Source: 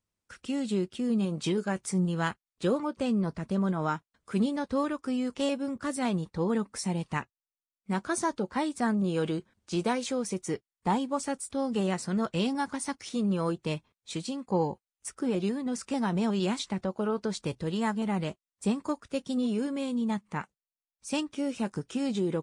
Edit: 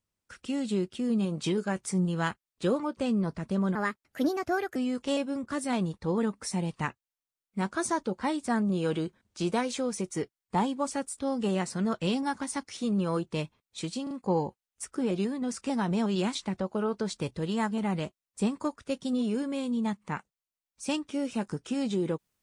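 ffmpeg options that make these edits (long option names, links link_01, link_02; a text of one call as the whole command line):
ffmpeg -i in.wav -filter_complex "[0:a]asplit=5[link_01][link_02][link_03][link_04][link_05];[link_01]atrim=end=3.754[link_06];[link_02]atrim=start=3.75:end=5.08,asetpts=PTS-STARTPTS,asetrate=58212,aresample=44100,atrim=end_sample=44434,asetpts=PTS-STARTPTS[link_07];[link_03]atrim=start=5.076:end=14.392[link_08];[link_04]atrim=start=14.348:end=14.392[link_09];[link_05]atrim=start=14.348[link_10];[link_06][link_07]acrossfade=duration=0.004:curve1=hsin:curve2=hsin[link_11];[link_11][link_08]acrossfade=duration=0.004:curve1=hsin:curve2=hsin[link_12];[link_12][link_09]acrossfade=duration=0.004:curve1=hsin:curve2=hsin[link_13];[link_13][link_10]acrossfade=duration=0.004:curve1=hsin:curve2=hsin" out.wav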